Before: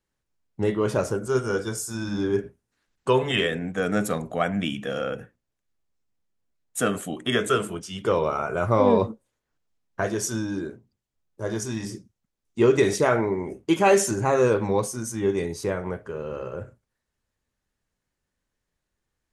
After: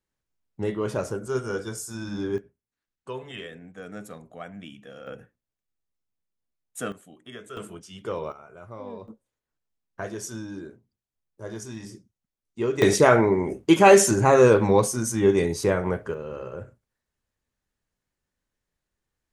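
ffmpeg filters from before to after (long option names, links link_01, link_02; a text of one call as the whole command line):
ffmpeg -i in.wav -af "asetnsamples=nb_out_samples=441:pad=0,asendcmd='2.38 volume volume -15dB;5.07 volume volume -8dB;6.92 volume volume -18.5dB;7.57 volume volume -8.5dB;8.32 volume volume -20dB;9.08 volume volume -7.5dB;12.82 volume volume 4.5dB;16.14 volume volume -2.5dB',volume=-4dB" out.wav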